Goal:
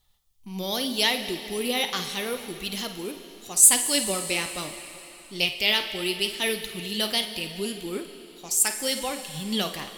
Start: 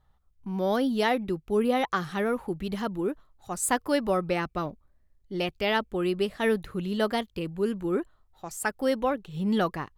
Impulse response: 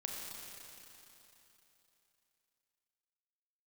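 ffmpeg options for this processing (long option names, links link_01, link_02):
-filter_complex "[0:a]asplit=2[link_01][link_02];[link_02]equalizer=frequency=180:width=2:gain=-6[link_03];[1:a]atrim=start_sample=2205,adelay=52[link_04];[link_03][link_04]afir=irnorm=-1:irlink=0,volume=-7.5dB[link_05];[link_01][link_05]amix=inputs=2:normalize=0,flanger=delay=2.3:depth=9.4:regen=64:speed=0.77:shape=triangular,aexciter=amount=6.4:drive=6.6:freq=2200,volume=-1dB"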